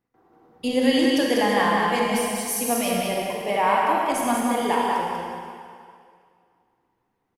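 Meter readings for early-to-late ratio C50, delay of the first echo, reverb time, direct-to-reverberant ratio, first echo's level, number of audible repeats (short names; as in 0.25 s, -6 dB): -3.0 dB, 0.193 s, 2.2 s, -4.0 dB, -3.5 dB, 1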